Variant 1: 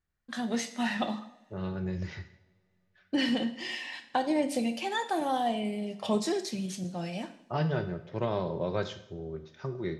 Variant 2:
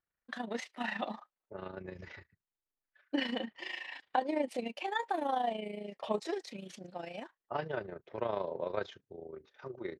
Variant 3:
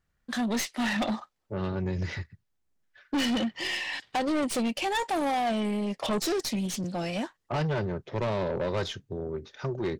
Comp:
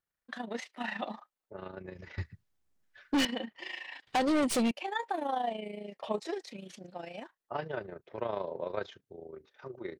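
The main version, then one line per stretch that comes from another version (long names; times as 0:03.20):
2
0:02.18–0:03.25: punch in from 3
0:04.07–0:04.71: punch in from 3
not used: 1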